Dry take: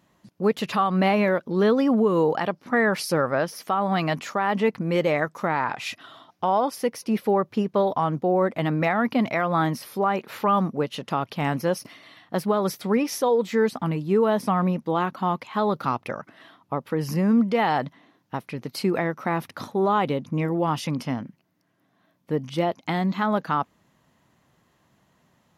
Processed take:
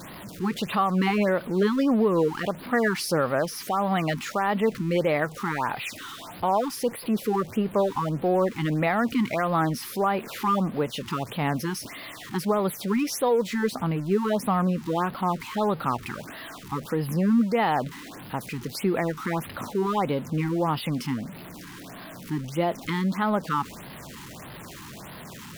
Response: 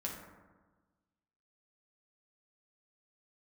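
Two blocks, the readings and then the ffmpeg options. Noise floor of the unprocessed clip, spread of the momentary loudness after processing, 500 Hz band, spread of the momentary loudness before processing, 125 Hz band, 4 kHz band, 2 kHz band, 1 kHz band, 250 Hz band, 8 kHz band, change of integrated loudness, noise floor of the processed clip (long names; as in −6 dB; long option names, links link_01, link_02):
−66 dBFS, 16 LU, −2.5 dB, 9 LU, −0.5 dB, 0.0 dB, −2.0 dB, −2.0 dB, −1.0 dB, +2.0 dB, −2.0 dB, −42 dBFS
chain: -af "aeval=exprs='val(0)+0.5*0.0211*sgn(val(0))':channel_layout=same,afftfilt=real='re*(1-between(b*sr/1024,540*pow(7400/540,0.5+0.5*sin(2*PI*1.6*pts/sr))/1.41,540*pow(7400/540,0.5+0.5*sin(2*PI*1.6*pts/sr))*1.41))':imag='im*(1-between(b*sr/1024,540*pow(7400/540,0.5+0.5*sin(2*PI*1.6*pts/sr))/1.41,540*pow(7400/540,0.5+0.5*sin(2*PI*1.6*pts/sr))*1.41))':win_size=1024:overlap=0.75,volume=-2dB"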